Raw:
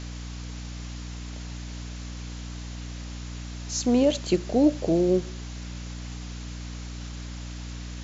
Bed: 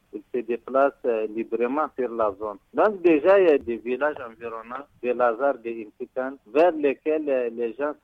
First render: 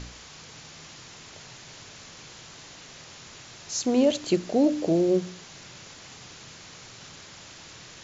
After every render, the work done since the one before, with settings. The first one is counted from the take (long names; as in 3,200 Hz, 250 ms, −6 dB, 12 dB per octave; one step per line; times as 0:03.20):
hum removal 60 Hz, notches 5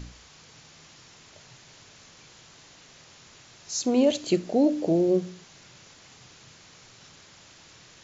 noise reduction from a noise print 6 dB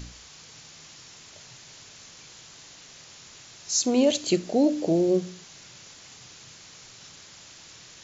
high-shelf EQ 3,500 Hz +8 dB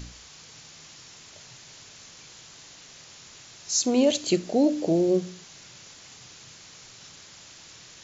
no processing that can be heard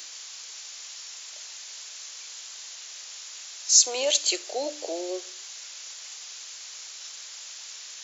Bessel high-pass filter 700 Hz, order 8
high-shelf EQ 3,000 Hz +10 dB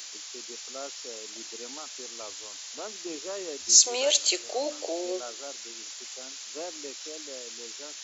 mix in bed −20.5 dB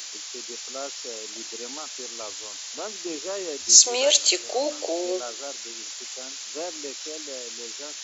level +4.5 dB
brickwall limiter −1 dBFS, peak gain reduction 1 dB